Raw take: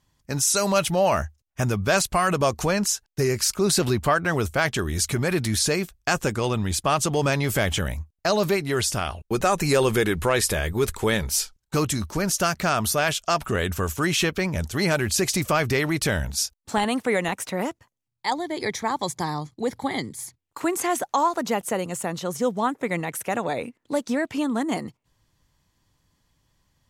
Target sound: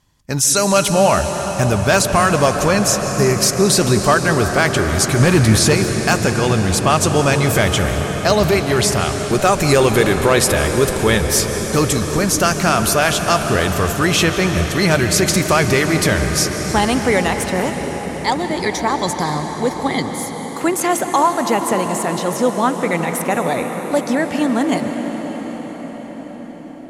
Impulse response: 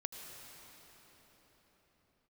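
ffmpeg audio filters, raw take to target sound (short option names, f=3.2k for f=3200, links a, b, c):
-filter_complex "[0:a]asplit=3[a][b][c];[a]afade=t=out:st=5.19:d=0.02[d];[b]equalizer=f=125:t=o:w=1:g=7,equalizer=f=250:t=o:w=1:g=4,equalizer=f=1k:t=o:w=1:g=10,afade=t=in:st=5.19:d=0.02,afade=t=out:st=5.72:d=0.02[e];[c]afade=t=in:st=5.72:d=0.02[f];[d][e][f]amix=inputs=3:normalize=0,aeval=exprs='0.282*(abs(mod(val(0)/0.282+3,4)-2)-1)':c=same,asplit=2[g][h];[1:a]atrim=start_sample=2205,asetrate=25137,aresample=44100[i];[h][i]afir=irnorm=-1:irlink=0,volume=3.5dB[j];[g][j]amix=inputs=2:normalize=0,volume=-1dB"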